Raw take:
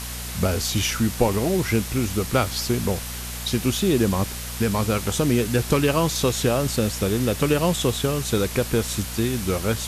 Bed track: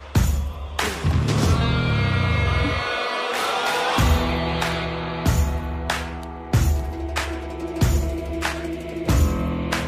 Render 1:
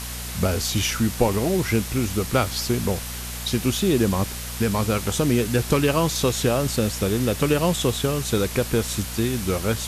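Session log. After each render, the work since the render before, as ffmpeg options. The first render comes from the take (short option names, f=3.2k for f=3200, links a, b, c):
-af anull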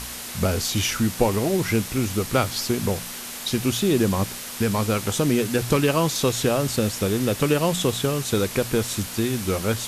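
-af "bandreject=f=60:t=h:w=4,bandreject=f=120:t=h:w=4,bandreject=f=180:t=h:w=4"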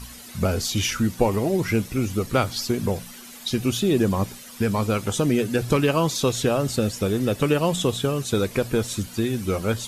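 -af "afftdn=nr=12:nf=-35"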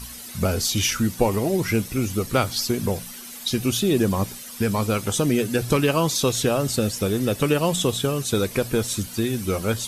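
-af "highshelf=f=4.9k:g=6.5,bandreject=f=7k:w=26"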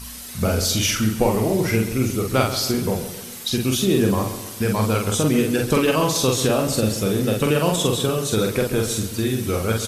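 -filter_complex "[0:a]asplit=2[a][b];[b]adelay=46,volume=-3dB[c];[a][c]amix=inputs=2:normalize=0,asplit=2[d][e];[e]adelay=135,lowpass=f=3.6k:p=1,volume=-11dB,asplit=2[f][g];[g]adelay=135,lowpass=f=3.6k:p=1,volume=0.5,asplit=2[h][i];[i]adelay=135,lowpass=f=3.6k:p=1,volume=0.5,asplit=2[j][k];[k]adelay=135,lowpass=f=3.6k:p=1,volume=0.5,asplit=2[l][m];[m]adelay=135,lowpass=f=3.6k:p=1,volume=0.5[n];[d][f][h][j][l][n]amix=inputs=6:normalize=0"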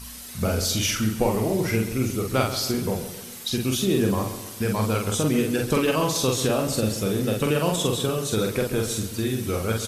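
-af "volume=-3.5dB"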